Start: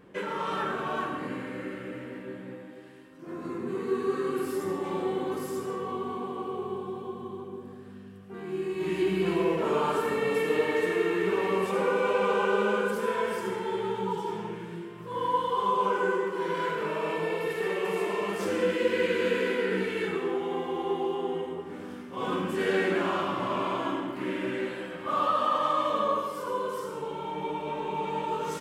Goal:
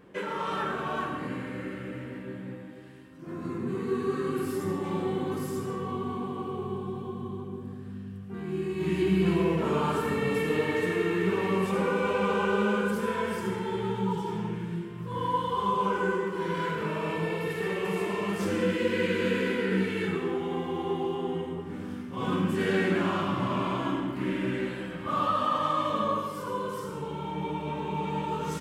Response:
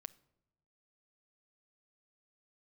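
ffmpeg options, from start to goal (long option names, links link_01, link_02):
-af "asubboost=boost=4:cutoff=210"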